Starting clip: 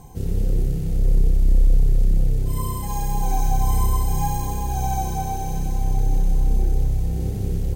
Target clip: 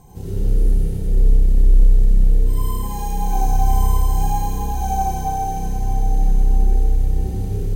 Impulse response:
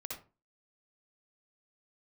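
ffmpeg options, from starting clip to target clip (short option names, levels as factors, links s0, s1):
-filter_complex "[0:a]asettb=1/sr,asplit=3[s0][s1][s2];[s0]atrim=end=0.494[s3];[s1]atrim=start=0.49:end=1.01,asetpts=PTS-STARTPTS,afade=t=in:d=0.004:c=qsin,afade=t=out:st=0.516:d=0.004:c=qsin,equalizer=f=10000:t=o:w=0.32:g=6[s4];[s2]atrim=start=1.006[s5];[s3][s4]acrossfade=d=0.004:c1=hsin:c2=qsin[s6];[s6][s5]acrossfade=d=0.004:c1=qsin:c2=hsin[s7];[1:a]atrim=start_sample=2205,asetrate=32193,aresample=44100[s8];[s7][s8]afir=irnorm=-1:irlink=0"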